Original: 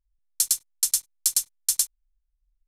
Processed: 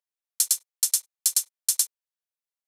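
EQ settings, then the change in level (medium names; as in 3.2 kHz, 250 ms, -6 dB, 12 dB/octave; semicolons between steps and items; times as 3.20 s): steep high-pass 440 Hz 48 dB/octave; 0.0 dB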